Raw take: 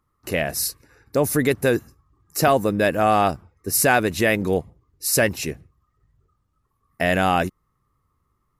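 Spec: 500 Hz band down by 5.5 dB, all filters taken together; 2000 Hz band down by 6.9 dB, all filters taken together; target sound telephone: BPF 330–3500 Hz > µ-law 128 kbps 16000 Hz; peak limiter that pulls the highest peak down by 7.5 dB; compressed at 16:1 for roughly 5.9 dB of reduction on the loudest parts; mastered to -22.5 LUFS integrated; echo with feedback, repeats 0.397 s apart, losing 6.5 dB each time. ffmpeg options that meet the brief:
-af "equalizer=f=500:t=o:g=-5.5,equalizer=f=2k:t=o:g=-8.5,acompressor=threshold=-22dB:ratio=16,alimiter=limit=-19.5dB:level=0:latency=1,highpass=330,lowpass=3.5k,aecho=1:1:397|794|1191|1588|1985|2382:0.473|0.222|0.105|0.0491|0.0231|0.0109,volume=12.5dB" -ar 16000 -c:a pcm_mulaw

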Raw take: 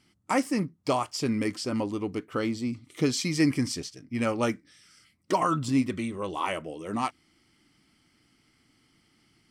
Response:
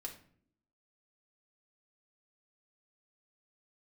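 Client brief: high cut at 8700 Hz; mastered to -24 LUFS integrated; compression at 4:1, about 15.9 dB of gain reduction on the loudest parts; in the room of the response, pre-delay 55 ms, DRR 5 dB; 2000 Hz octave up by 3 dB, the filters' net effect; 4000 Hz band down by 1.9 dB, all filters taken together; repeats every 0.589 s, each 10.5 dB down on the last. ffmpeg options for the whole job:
-filter_complex "[0:a]lowpass=8.7k,equalizer=f=2k:t=o:g=4.5,equalizer=f=4k:t=o:g=-3.5,acompressor=threshold=-39dB:ratio=4,aecho=1:1:589|1178|1767:0.299|0.0896|0.0269,asplit=2[a][b];[1:a]atrim=start_sample=2205,adelay=55[c];[b][c]afir=irnorm=-1:irlink=0,volume=-2.5dB[d];[a][d]amix=inputs=2:normalize=0,volume=16dB"

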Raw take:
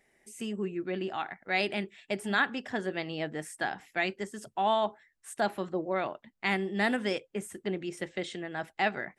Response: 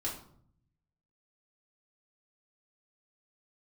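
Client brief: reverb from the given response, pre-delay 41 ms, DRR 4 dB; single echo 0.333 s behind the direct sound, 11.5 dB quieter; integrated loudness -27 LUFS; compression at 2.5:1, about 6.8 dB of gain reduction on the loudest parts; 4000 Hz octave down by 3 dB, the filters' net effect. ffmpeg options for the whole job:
-filter_complex "[0:a]equalizer=f=4k:t=o:g=-4,acompressor=threshold=-33dB:ratio=2.5,aecho=1:1:333:0.266,asplit=2[a][b];[1:a]atrim=start_sample=2205,adelay=41[c];[b][c]afir=irnorm=-1:irlink=0,volume=-6.5dB[d];[a][d]amix=inputs=2:normalize=0,volume=8.5dB"

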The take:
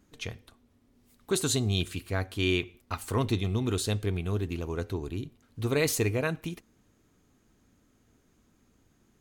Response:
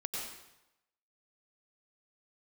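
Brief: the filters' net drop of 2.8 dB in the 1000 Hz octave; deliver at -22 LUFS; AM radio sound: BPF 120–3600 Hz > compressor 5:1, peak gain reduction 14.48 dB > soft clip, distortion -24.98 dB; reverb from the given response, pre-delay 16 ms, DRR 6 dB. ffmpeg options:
-filter_complex "[0:a]equalizer=f=1k:t=o:g=-3.5,asplit=2[a][b];[1:a]atrim=start_sample=2205,adelay=16[c];[b][c]afir=irnorm=-1:irlink=0,volume=-8dB[d];[a][d]amix=inputs=2:normalize=0,highpass=120,lowpass=3.6k,acompressor=threshold=-38dB:ratio=5,asoftclip=threshold=-27.5dB,volume=20.5dB"

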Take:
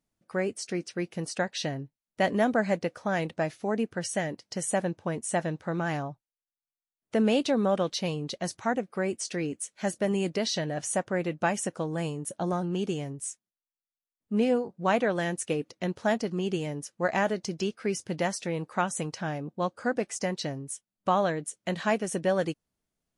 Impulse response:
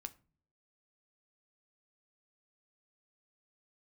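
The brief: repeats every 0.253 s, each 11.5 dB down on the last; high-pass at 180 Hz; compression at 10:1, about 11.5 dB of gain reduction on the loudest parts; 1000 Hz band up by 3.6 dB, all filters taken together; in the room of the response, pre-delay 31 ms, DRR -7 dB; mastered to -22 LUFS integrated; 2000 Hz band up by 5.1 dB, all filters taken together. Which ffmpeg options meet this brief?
-filter_complex "[0:a]highpass=180,equalizer=f=1k:t=o:g=4,equalizer=f=2k:t=o:g=5,acompressor=threshold=-29dB:ratio=10,aecho=1:1:253|506|759:0.266|0.0718|0.0194,asplit=2[a][b];[1:a]atrim=start_sample=2205,adelay=31[c];[b][c]afir=irnorm=-1:irlink=0,volume=11.5dB[d];[a][d]amix=inputs=2:normalize=0,volume=5dB"

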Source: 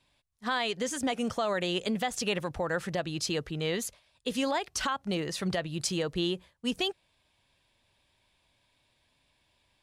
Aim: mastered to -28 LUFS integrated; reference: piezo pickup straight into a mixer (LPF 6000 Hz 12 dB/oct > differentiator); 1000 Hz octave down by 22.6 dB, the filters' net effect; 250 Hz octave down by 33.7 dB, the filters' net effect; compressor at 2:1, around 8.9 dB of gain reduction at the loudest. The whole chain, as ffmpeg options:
-af "equalizer=f=250:t=o:g=-7,equalizer=f=1k:t=o:g=-6.5,acompressor=threshold=-44dB:ratio=2,lowpass=6k,aderivative,volume=23dB"

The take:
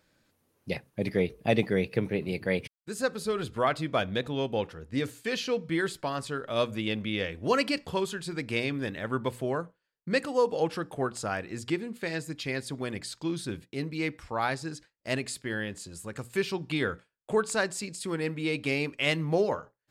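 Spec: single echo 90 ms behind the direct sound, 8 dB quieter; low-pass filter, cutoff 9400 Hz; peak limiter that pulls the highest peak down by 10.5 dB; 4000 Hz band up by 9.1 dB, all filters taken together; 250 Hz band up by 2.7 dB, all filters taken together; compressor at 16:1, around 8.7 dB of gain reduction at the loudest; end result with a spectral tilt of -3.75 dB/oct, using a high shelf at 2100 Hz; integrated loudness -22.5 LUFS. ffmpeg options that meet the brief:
-af "lowpass=9.4k,equalizer=f=250:t=o:g=3.5,highshelf=f=2.1k:g=6.5,equalizer=f=4k:t=o:g=5.5,acompressor=threshold=-25dB:ratio=16,alimiter=limit=-21.5dB:level=0:latency=1,aecho=1:1:90:0.398,volume=10dB"

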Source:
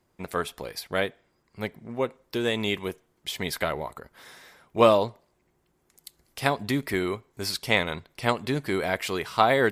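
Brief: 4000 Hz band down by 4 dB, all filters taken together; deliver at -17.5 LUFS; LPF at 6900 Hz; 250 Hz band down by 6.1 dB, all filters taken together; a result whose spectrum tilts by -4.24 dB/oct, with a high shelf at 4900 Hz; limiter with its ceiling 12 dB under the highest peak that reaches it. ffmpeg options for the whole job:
-af "lowpass=6.9k,equalizer=f=250:t=o:g=-8.5,equalizer=f=4k:t=o:g=-8,highshelf=f=4.9k:g=7.5,volume=15dB,alimiter=limit=-2.5dB:level=0:latency=1"

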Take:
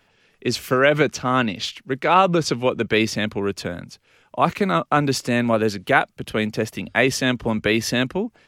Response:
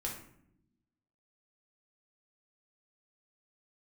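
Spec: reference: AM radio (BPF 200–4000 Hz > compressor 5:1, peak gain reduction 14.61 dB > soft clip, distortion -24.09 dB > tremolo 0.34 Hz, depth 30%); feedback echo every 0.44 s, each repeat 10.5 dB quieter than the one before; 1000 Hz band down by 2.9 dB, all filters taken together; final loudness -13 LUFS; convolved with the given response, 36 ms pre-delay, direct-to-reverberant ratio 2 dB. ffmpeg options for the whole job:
-filter_complex "[0:a]equalizer=f=1k:t=o:g=-4,aecho=1:1:440|880|1320:0.299|0.0896|0.0269,asplit=2[a][b];[1:a]atrim=start_sample=2205,adelay=36[c];[b][c]afir=irnorm=-1:irlink=0,volume=-3dB[d];[a][d]amix=inputs=2:normalize=0,highpass=200,lowpass=4k,acompressor=threshold=-27dB:ratio=5,asoftclip=threshold=-18dB,tremolo=f=0.34:d=0.3,volume=19dB"

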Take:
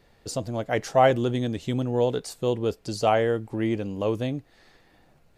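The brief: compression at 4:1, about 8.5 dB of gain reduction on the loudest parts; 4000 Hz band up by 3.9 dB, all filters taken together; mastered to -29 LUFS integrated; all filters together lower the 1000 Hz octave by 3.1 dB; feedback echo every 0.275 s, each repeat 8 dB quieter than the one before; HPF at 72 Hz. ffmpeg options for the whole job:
-af "highpass=72,equalizer=f=1k:t=o:g=-5,equalizer=f=4k:t=o:g=5.5,acompressor=threshold=-25dB:ratio=4,aecho=1:1:275|550|825|1100|1375:0.398|0.159|0.0637|0.0255|0.0102,volume=1dB"

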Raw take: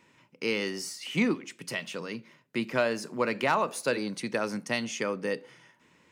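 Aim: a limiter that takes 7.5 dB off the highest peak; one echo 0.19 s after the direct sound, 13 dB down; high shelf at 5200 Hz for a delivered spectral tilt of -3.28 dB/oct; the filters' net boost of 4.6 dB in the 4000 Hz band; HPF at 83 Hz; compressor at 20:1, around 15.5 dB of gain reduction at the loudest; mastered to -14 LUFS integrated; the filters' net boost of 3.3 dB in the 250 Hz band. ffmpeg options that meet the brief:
-af "highpass=83,equalizer=f=250:t=o:g=4,equalizer=f=4k:t=o:g=8,highshelf=f=5.2k:g=-4,acompressor=threshold=-33dB:ratio=20,alimiter=level_in=3.5dB:limit=-24dB:level=0:latency=1,volume=-3.5dB,aecho=1:1:190:0.224,volume=25dB"

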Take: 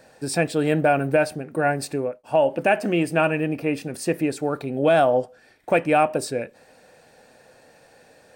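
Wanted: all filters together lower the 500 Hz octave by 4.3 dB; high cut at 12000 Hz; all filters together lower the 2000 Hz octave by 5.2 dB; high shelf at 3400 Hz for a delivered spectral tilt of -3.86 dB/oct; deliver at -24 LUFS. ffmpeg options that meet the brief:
-af "lowpass=12k,equalizer=f=500:t=o:g=-5,equalizer=f=2k:t=o:g=-5.5,highshelf=f=3.4k:g=-5,volume=1.5dB"

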